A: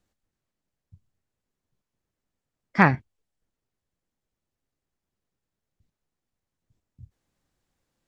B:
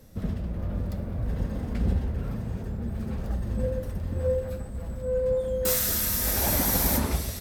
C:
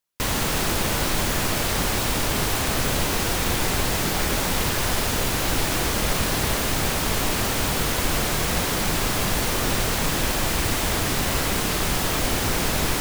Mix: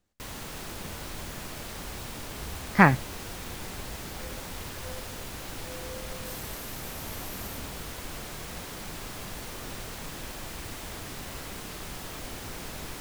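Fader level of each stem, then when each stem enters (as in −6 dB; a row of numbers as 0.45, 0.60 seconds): 0.0, −18.5, −16.0 decibels; 0.00, 0.60, 0.00 seconds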